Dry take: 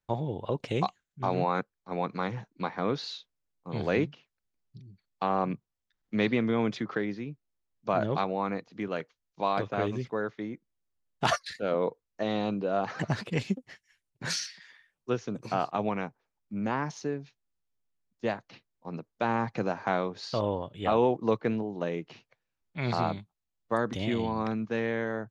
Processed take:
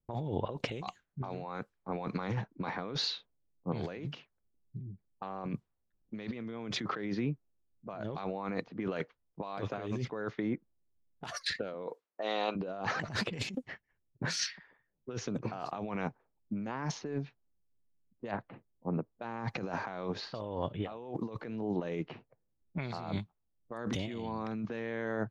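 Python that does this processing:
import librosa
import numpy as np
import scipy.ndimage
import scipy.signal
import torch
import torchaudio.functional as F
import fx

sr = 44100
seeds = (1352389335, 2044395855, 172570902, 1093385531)

y = fx.highpass(x, sr, hz=fx.line((11.87, 300.0), (12.55, 700.0)), slope=12, at=(11.87, 12.55), fade=0.02)
y = fx.air_absorb(y, sr, metres=410.0, at=(18.31, 19.14))
y = fx.env_lowpass(y, sr, base_hz=360.0, full_db=-27.0)
y = fx.over_compress(y, sr, threshold_db=-37.0, ratio=-1.0)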